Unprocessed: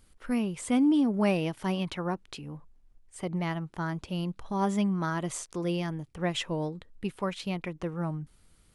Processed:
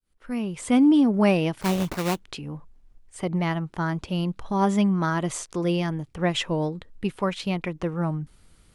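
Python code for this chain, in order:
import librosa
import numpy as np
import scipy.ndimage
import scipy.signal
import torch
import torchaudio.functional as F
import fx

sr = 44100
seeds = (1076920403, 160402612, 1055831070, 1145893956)

y = fx.fade_in_head(x, sr, length_s=0.75)
y = fx.high_shelf(y, sr, hz=9300.0, db=-5.5)
y = fx.sample_hold(y, sr, seeds[0], rate_hz=3300.0, jitter_pct=20, at=(1.61, 2.21))
y = y * 10.0 ** (6.0 / 20.0)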